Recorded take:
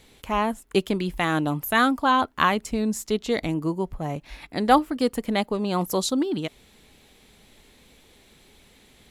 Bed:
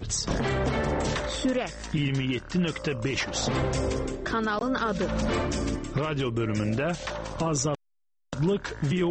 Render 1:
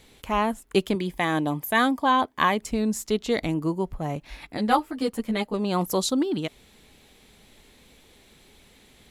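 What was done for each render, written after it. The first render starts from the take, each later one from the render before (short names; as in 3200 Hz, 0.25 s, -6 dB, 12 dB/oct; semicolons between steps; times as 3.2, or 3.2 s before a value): 0.95–2.62 notch comb 1400 Hz; 4.57–5.54 ensemble effect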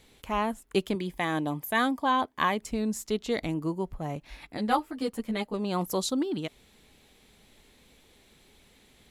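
gain -4.5 dB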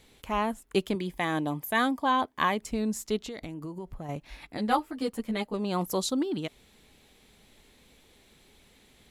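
3.18–4.09 compressor 12:1, threshold -34 dBFS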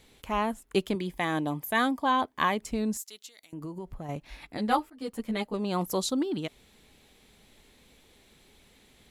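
2.97–3.53 differentiator; 4.9–5.35 fade in equal-power, from -22 dB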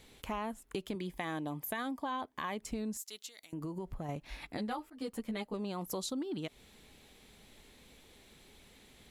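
limiter -20 dBFS, peak gain reduction 10 dB; compressor 4:1, threshold -36 dBFS, peak gain reduction 10 dB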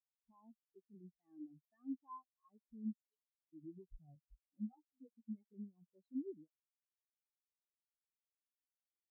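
limiter -33.5 dBFS, peak gain reduction 10 dB; spectral expander 4:1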